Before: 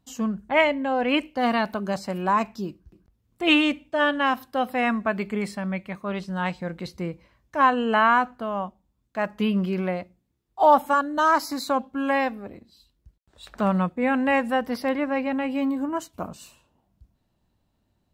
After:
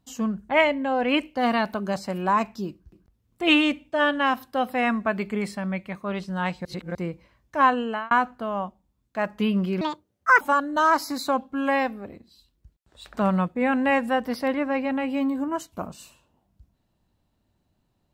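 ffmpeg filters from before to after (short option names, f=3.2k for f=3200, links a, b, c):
-filter_complex "[0:a]asplit=6[a][b][c][d][e][f];[a]atrim=end=6.652[g];[b]atrim=start=6.648:end=6.952,asetpts=PTS-STARTPTS,areverse[h];[c]atrim=start=6.948:end=8.11,asetpts=PTS-STARTPTS,afade=t=out:st=0.762:d=0.4[i];[d]atrim=start=8.11:end=9.814,asetpts=PTS-STARTPTS,afade=t=in:d=0.004:c=hsin[j];[e]atrim=start=9.81:end=10.82,asetpts=PTS-STARTPTS,asetrate=74529,aresample=44100[k];[f]atrim=start=10.816[l];[g][h]acrossfade=d=0.004:c1=hsin:c2=hsin[m];[i][j]concat=n=2:v=0:a=1[n];[m][n]acrossfade=d=0.004:c1=hsin:c2=hsin[o];[o][k]acrossfade=d=0.004:c1=hsin:c2=hsin[p];[p][l]acrossfade=d=0.004:c1=hsin:c2=hsin"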